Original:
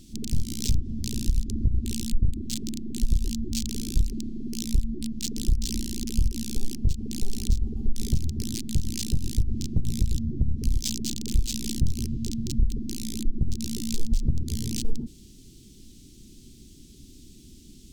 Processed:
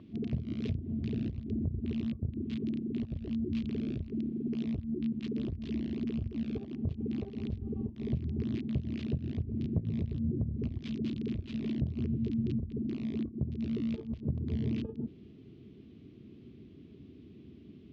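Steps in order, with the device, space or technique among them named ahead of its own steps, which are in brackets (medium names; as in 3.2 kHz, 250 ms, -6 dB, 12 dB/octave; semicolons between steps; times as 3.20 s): bass amplifier (compression 4:1, threshold -22 dBFS, peak gain reduction 6.5 dB; cabinet simulation 83–2400 Hz, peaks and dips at 430 Hz +6 dB, 640 Hz +10 dB, 1.1 kHz +10 dB)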